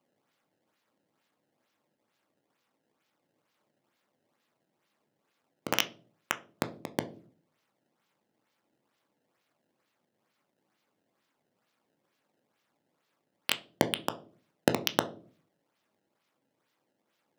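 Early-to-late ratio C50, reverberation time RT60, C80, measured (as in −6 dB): 17.0 dB, 0.45 s, 21.5 dB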